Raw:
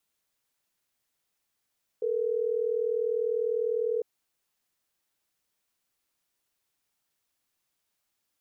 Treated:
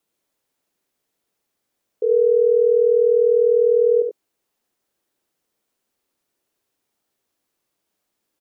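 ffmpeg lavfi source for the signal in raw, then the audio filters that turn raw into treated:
-f lavfi -i "aevalsrc='0.0398*(sin(2*PI*440*t)+sin(2*PI*480*t))*clip(min(mod(t,6),2-mod(t,6))/0.005,0,1)':d=3.12:s=44100"
-af "equalizer=f=370:w=0.59:g=10.5,aecho=1:1:73|92:0.501|0.316"

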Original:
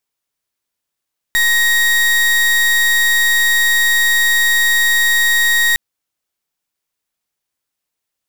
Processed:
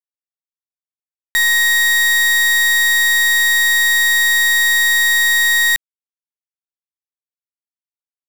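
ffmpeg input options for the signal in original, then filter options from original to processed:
-f lavfi -i "aevalsrc='0.224*(2*lt(mod(1880*t,1),0.36)-1)':d=4.41:s=44100"
-af "lowshelf=f=250:g=-7.5,acrusher=bits=6:mix=0:aa=0.000001"

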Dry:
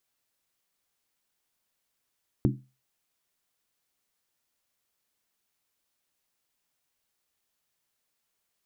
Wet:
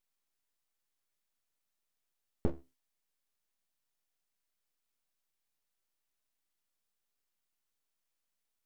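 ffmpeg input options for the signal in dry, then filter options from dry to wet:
-f lavfi -i "aevalsrc='0.106*pow(10,-3*t/0.31)*sin(2*PI*130*t)+0.0841*pow(10,-3*t/0.246)*sin(2*PI*207.2*t)+0.0668*pow(10,-3*t/0.212)*sin(2*PI*277.7*t)+0.0531*pow(10,-3*t/0.205)*sin(2*PI*298.5*t)+0.0422*pow(10,-3*t/0.19)*sin(2*PI*344.9*t)':d=0.63:s=44100"
-af "flanger=delay=9.1:depth=5.6:regen=66:speed=0.8:shape=triangular,aeval=exprs='abs(val(0))':c=same"

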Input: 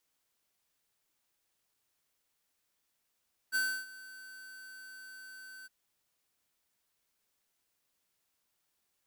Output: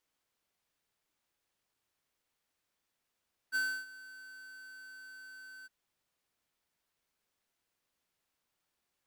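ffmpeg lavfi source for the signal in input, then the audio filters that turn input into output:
-f lavfi -i "aevalsrc='0.0335*(2*lt(mod(1530*t,1),0.5)-1)':d=2.162:s=44100,afade=t=in:d=0.035,afade=t=out:st=0.035:d=0.298:silence=0.1,afade=t=out:st=2.14:d=0.022"
-af "highshelf=f=5.1k:g=-8"

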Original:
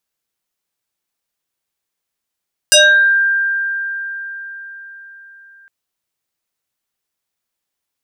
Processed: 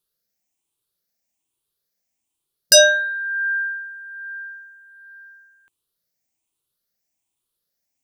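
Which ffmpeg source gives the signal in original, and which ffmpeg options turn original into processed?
-f lavfi -i "aevalsrc='0.596*pow(10,-3*t/4.66)*sin(2*PI*1590*t+4.3*pow(10,-3*t/0.49)*sin(2*PI*1.38*1590*t))':d=2.96:s=44100"
-af "afftfilt=real='re*pow(10,10/40*sin(2*PI*(0.63*log(max(b,1)*sr/1024/100)/log(2)-(1.2)*(pts-256)/sr)))':imag='im*pow(10,10/40*sin(2*PI*(0.63*log(max(b,1)*sr/1024/100)/log(2)-(1.2)*(pts-256)/sr)))':win_size=1024:overlap=0.75,equalizer=f=1.5k:t=o:w=1.9:g=-8.5"

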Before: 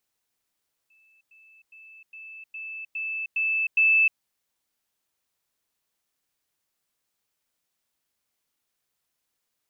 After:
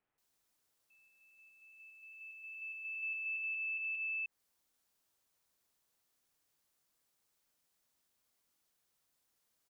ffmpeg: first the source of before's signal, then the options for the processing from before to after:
-f lavfi -i "aevalsrc='pow(10,(-58+6*floor(t/0.41))/20)*sin(2*PI*2630*t)*clip(min(mod(t,0.41),0.31-mod(t,0.41))/0.005,0,1)':d=3.28:s=44100"
-filter_complex "[0:a]acompressor=threshold=-27dB:ratio=6,acrossover=split=2500[a][b];[b]adelay=180[c];[a][c]amix=inputs=2:normalize=0,alimiter=level_in=11dB:limit=-24dB:level=0:latency=1:release=73,volume=-11dB"

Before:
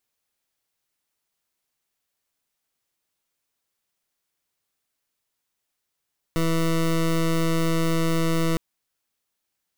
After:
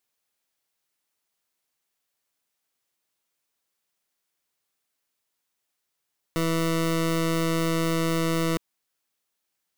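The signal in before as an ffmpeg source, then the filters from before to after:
-f lavfi -i "aevalsrc='0.0841*(2*lt(mod(164*t,1),0.2)-1)':d=2.21:s=44100"
-af "lowshelf=f=120:g=-8"

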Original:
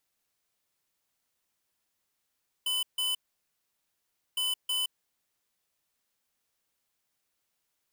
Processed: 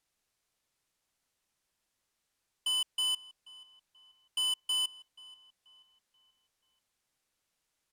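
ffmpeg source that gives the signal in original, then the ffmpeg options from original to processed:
-f lavfi -i "aevalsrc='0.0335*(2*lt(mod(3010*t,1),0.5)-1)*clip(min(mod(mod(t,1.71),0.32),0.17-mod(mod(t,1.71),0.32))/0.005,0,1)*lt(mod(t,1.71),0.64)':d=3.42:s=44100"
-filter_complex "[0:a]lowpass=11k,lowshelf=f=63:g=7.5,asplit=2[a][b];[b]adelay=483,lowpass=f=3.1k:p=1,volume=-18.5dB,asplit=2[c][d];[d]adelay=483,lowpass=f=3.1k:p=1,volume=0.5,asplit=2[e][f];[f]adelay=483,lowpass=f=3.1k:p=1,volume=0.5,asplit=2[g][h];[h]adelay=483,lowpass=f=3.1k:p=1,volume=0.5[i];[a][c][e][g][i]amix=inputs=5:normalize=0"

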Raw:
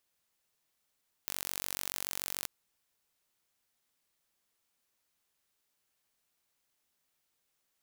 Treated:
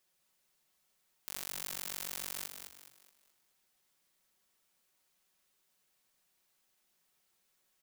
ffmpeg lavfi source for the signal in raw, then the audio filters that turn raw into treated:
-f lavfi -i "aevalsrc='0.355*eq(mod(n,940),0)':d=1.19:s=44100"
-filter_complex "[0:a]aecho=1:1:5.4:0.88,alimiter=limit=-15.5dB:level=0:latency=1,asplit=2[a][b];[b]asplit=5[c][d][e][f][g];[c]adelay=211,afreqshift=62,volume=-7dB[h];[d]adelay=422,afreqshift=124,volume=-15.2dB[i];[e]adelay=633,afreqshift=186,volume=-23.4dB[j];[f]adelay=844,afreqshift=248,volume=-31.5dB[k];[g]adelay=1055,afreqshift=310,volume=-39.7dB[l];[h][i][j][k][l]amix=inputs=5:normalize=0[m];[a][m]amix=inputs=2:normalize=0"

